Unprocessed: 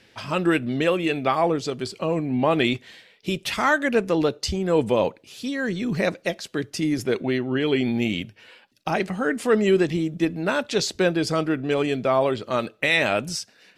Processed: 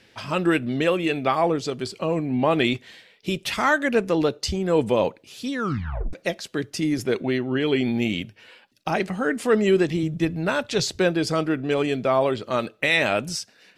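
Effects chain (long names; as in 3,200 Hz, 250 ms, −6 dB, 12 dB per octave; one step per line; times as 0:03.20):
0:05.53: tape stop 0.60 s
0:10.03–0:11.00: low shelf with overshoot 170 Hz +6.5 dB, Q 1.5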